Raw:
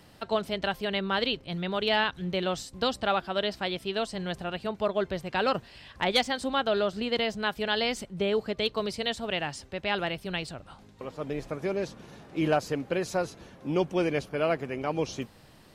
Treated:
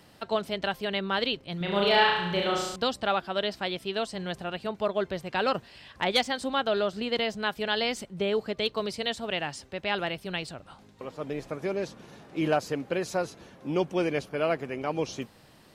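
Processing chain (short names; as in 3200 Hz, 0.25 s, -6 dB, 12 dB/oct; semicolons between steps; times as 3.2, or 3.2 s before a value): low shelf 76 Hz -9 dB; 1.57–2.76 flutter echo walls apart 6 m, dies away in 0.92 s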